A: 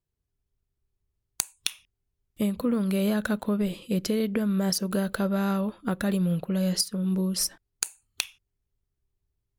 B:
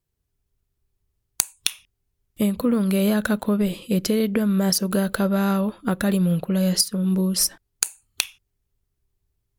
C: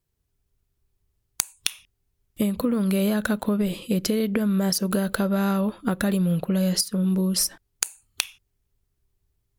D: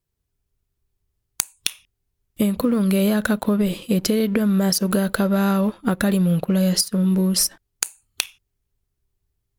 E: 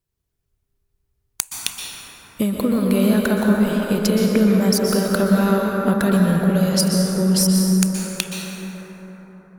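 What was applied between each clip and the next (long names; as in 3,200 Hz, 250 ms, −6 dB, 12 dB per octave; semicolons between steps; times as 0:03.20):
parametric band 14,000 Hz +3.5 dB 0.99 octaves; level +5 dB
downward compressor, threshold −21 dBFS, peak gain reduction 8.5 dB; level +1.5 dB
leveller curve on the samples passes 1
dense smooth reverb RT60 4.8 s, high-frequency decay 0.3×, pre-delay 110 ms, DRR −1 dB; level −1 dB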